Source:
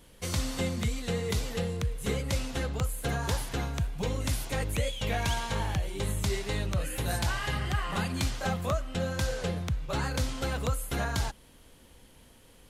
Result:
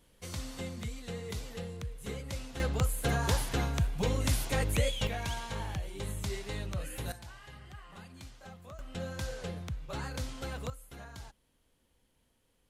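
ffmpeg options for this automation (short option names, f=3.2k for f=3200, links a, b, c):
-af "asetnsamples=n=441:p=0,asendcmd='2.6 volume volume 1dB;5.07 volume volume -6.5dB;7.12 volume volume -19dB;8.79 volume volume -7.5dB;10.7 volume volume -17dB',volume=-9dB"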